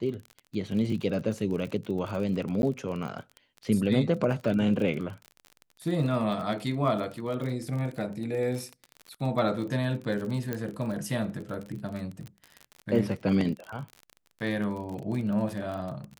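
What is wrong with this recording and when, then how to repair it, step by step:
crackle 37 per s -34 dBFS
2.62–2.63 s: dropout 11 ms
10.53 s: pop -17 dBFS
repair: de-click; interpolate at 2.62 s, 11 ms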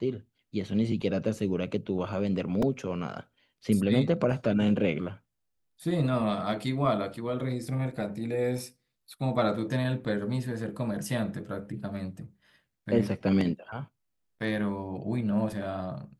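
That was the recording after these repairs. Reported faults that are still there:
nothing left

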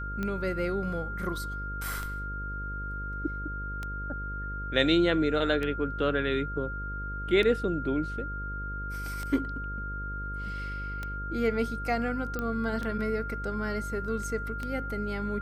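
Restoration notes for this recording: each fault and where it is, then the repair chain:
buzz 50 Hz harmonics 11 -37 dBFS
tick 33 1/3 rpm -20 dBFS
whine 1.4 kHz -36 dBFS
12.39 s: pop -19 dBFS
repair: de-click; de-hum 50 Hz, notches 11; band-stop 1.4 kHz, Q 30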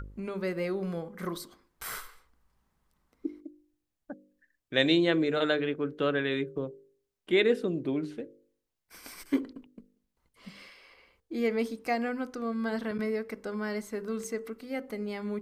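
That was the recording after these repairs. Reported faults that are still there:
nothing left

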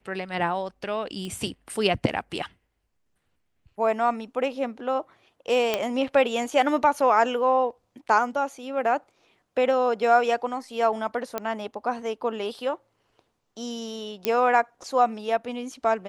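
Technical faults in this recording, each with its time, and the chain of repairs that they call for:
1.25 s: pop -23 dBFS
5.74 s: pop -9 dBFS
11.38 s: pop -13 dBFS
14.25 s: pop -8 dBFS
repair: de-click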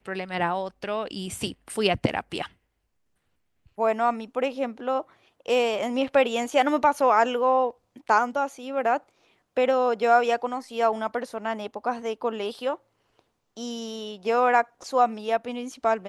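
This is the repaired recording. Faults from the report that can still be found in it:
nothing left

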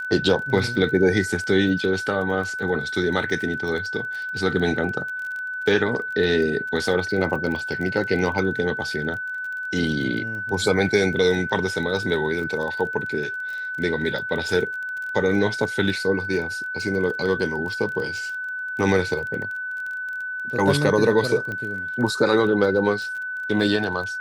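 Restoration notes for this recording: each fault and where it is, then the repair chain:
crackle 25 per s -30 dBFS
whine 1.5 kHz -27 dBFS
21.52 s: pop -19 dBFS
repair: de-click; band-stop 1.5 kHz, Q 30

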